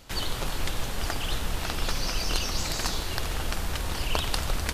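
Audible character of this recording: noise floor -32 dBFS; spectral tilt -3.5 dB/octave

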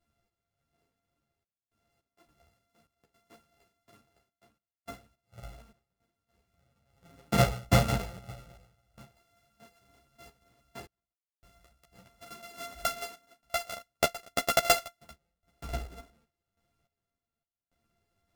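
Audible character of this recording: a buzz of ramps at a fixed pitch in blocks of 64 samples; random-step tremolo, depth 100%; a shimmering, thickened sound

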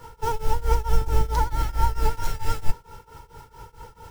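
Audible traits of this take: tremolo triangle 4.5 Hz, depth 95%

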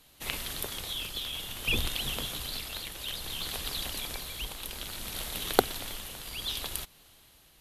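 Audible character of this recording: tremolo triangle 0.6 Hz, depth 50%

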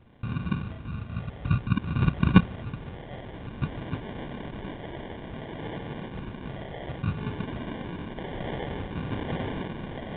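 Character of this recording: phasing stages 4, 0.56 Hz, lowest notch 350–1200 Hz; aliases and images of a low sample rate 1.3 kHz, jitter 0%; µ-law

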